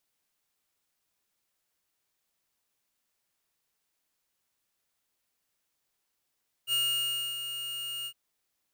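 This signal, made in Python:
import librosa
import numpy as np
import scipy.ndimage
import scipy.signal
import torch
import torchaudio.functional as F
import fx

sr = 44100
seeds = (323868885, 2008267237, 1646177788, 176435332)

y = fx.adsr_tone(sr, wave='square', hz=2850.0, attack_ms=58.0, decay_ms=632.0, sustain_db=-9.5, held_s=1.39, release_ms=70.0, level_db=-27.0)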